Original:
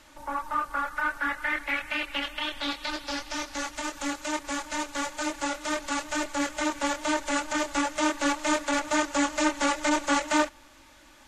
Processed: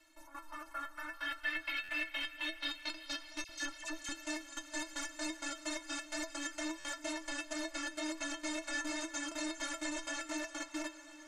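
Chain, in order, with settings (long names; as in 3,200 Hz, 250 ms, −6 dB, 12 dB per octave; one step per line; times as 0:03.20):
0:01.13–0:01.81: flat-topped bell 3,600 Hz +10 dB 1.1 octaves
feedback delay with all-pass diffusion 454 ms, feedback 55%, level −6 dB
output level in coarse steps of 15 dB
low-shelf EQ 490 Hz −7 dB
stiff-string resonator 320 Hz, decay 0.2 s, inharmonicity 0.008
0:03.44–0:04.09: all-pass dispersion lows, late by 52 ms, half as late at 1,800 Hz
buffer that repeats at 0:01.83/0:06.79, samples 512, times 4
level +8 dB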